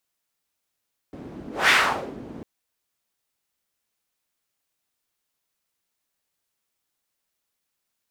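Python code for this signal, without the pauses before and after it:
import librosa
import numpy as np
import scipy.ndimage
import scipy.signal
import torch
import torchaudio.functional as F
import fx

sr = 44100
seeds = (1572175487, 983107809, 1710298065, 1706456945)

y = fx.whoosh(sr, seeds[0], length_s=1.3, peak_s=0.57, rise_s=0.21, fall_s=0.5, ends_hz=280.0, peak_hz=2000.0, q=1.8, swell_db=22.0)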